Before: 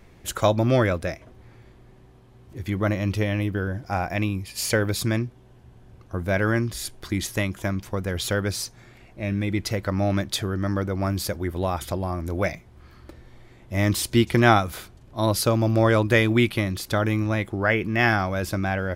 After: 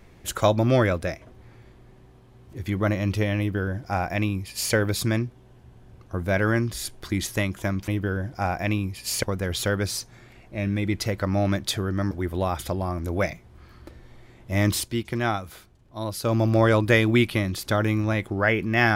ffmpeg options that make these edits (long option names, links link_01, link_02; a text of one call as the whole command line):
ffmpeg -i in.wav -filter_complex "[0:a]asplit=6[link_01][link_02][link_03][link_04][link_05][link_06];[link_01]atrim=end=7.882[link_07];[link_02]atrim=start=3.388:end=4.742[link_08];[link_03]atrim=start=7.878:end=10.762[link_09];[link_04]atrim=start=11.328:end=14.12,asetpts=PTS-STARTPTS,afade=type=out:start_time=2.672:duration=0.12:silence=0.375837[link_10];[link_05]atrim=start=14.12:end=15.44,asetpts=PTS-STARTPTS,volume=-8.5dB[link_11];[link_06]atrim=start=15.44,asetpts=PTS-STARTPTS,afade=type=in:duration=0.12:silence=0.375837[link_12];[link_07][link_08]acrossfade=duration=0.004:curve1=hsin:curve2=hsin[link_13];[link_13][link_09]acrossfade=duration=0.004:curve1=hsin:curve2=hsin[link_14];[link_10][link_11][link_12]concat=n=3:v=0:a=1[link_15];[link_14][link_15]acrossfade=duration=0.004:curve1=hsin:curve2=hsin" out.wav